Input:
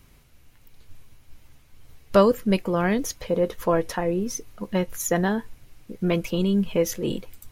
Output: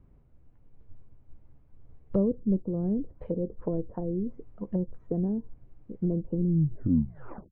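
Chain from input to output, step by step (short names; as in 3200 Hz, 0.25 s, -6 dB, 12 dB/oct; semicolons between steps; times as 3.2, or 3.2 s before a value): tape stop at the end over 1.14 s; treble ducked by the level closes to 360 Hz, closed at -21 dBFS; Bessel low-pass 540 Hz, order 2; gain -2.5 dB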